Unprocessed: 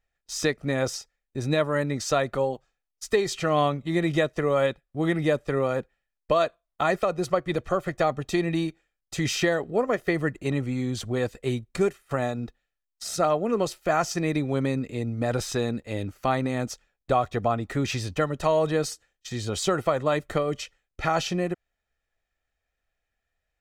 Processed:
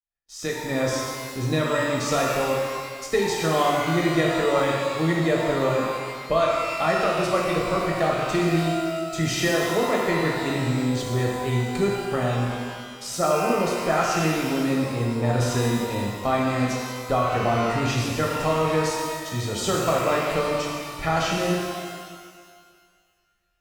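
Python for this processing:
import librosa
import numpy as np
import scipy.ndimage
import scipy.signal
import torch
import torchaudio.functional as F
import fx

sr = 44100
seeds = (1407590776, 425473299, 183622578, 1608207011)

y = fx.fade_in_head(x, sr, length_s=0.78)
y = fx.rev_shimmer(y, sr, seeds[0], rt60_s=1.8, semitones=12, shimmer_db=-8, drr_db=-3.0)
y = y * 10.0 ** (-2.0 / 20.0)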